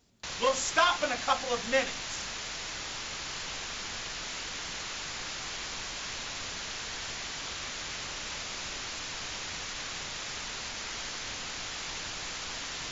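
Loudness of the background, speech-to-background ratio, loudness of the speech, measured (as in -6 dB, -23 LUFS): -36.0 LUFS, 7.0 dB, -29.0 LUFS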